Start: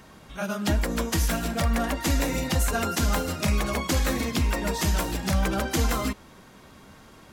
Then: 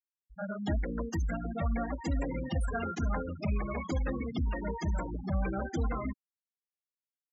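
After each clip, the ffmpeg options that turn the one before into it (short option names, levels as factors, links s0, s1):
-af "afftfilt=real='re*gte(hypot(re,im),0.0891)':imag='im*gte(hypot(re,im),0.0891)':win_size=1024:overlap=0.75,volume=0.473"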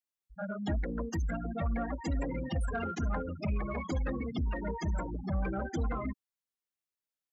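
-af "asoftclip=type=tanh:threshold=0.075"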